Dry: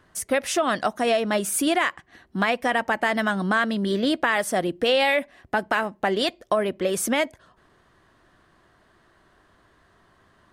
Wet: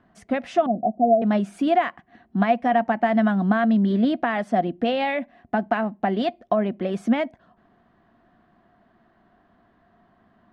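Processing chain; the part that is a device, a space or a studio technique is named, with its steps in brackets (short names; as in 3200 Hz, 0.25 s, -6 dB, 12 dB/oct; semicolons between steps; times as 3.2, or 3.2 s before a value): 0.66–1.22 Chebyshev low-pass 730 Hz, order 5; inside a cardboard box (LPF 3000 Hz 12 dB/oct; small resonant body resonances 220/700 Hz, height 14 dB, ringing for 40 ms); gain -5.5 dB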